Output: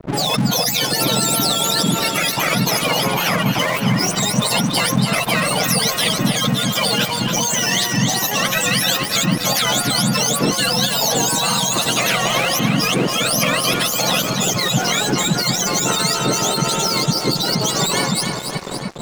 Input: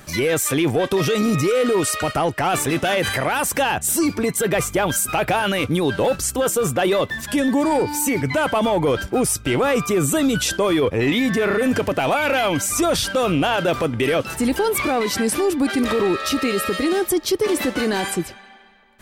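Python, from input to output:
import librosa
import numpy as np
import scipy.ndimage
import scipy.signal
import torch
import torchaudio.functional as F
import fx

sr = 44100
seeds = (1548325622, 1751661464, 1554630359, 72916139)

p1 = fx.octave_mirror(x, sr, pivot_hz=1300.0)
p2 = fx.spec_gate(p1, sr, threshold_db=-15, keep='strong')
p3 = p2 + fx.echo_split(p2, sr, split_hz=850.0, low_ms=734, high_ms=282, feedback_pct=52, wet_db=-11.0, dry=0)
p4 = np.sign(p3) * np.maximum(np.abs(p3) - 10.0 ** (-40.5 / 20.0), 0.0)
p5 = fx.spectral_comp(p4, sr, ratio=2.0)
y = F.gain(torch.from_numpy(p5), -2.0).numpy()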